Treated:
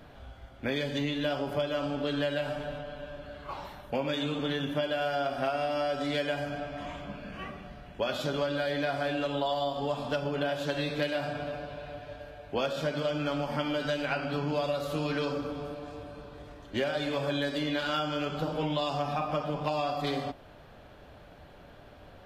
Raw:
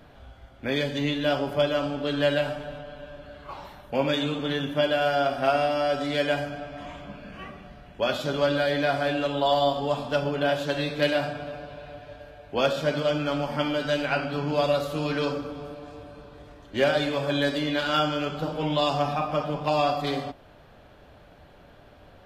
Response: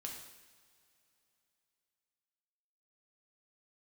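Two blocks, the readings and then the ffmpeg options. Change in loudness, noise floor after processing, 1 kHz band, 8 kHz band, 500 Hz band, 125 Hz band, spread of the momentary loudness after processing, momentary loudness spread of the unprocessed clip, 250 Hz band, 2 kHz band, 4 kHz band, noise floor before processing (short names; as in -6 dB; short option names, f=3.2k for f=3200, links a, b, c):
-6.0 dB, -52 dBFS, -6.0 dB, -4.5 dB, -6.0 dB, -4.0 dB, 12 LU, 18 LU, -4.0 dB, -5.5 dB, -5.5 dB, -52 dBFS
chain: -af "acompressor=threshold=-27dB:ratio=6"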